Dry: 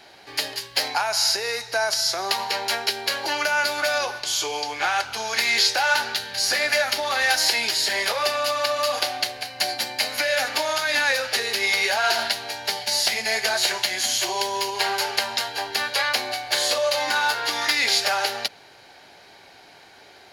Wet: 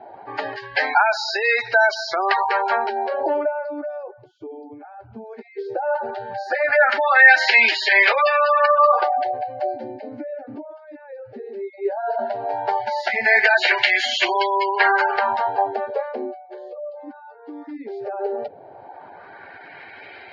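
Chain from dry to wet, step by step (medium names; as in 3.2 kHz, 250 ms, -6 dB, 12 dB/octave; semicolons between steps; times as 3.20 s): spectral gate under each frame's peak -15 dB strong; LFO low-pass sine 0.16 Hz 220–2400 Hz; trim +6 dB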